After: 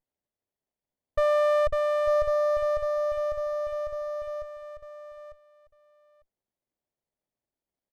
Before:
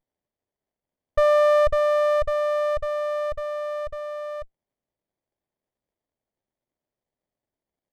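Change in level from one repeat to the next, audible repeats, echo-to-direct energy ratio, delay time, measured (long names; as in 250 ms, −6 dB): −16.0 dB, 2, −8.5 dB, 899 ms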